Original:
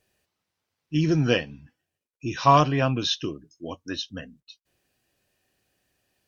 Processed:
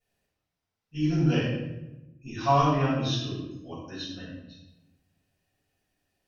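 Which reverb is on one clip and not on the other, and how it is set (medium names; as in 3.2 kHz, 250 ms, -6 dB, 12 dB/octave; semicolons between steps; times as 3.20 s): simulated room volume 370 m³, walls mixed, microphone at 6.5 m; trim -19 dB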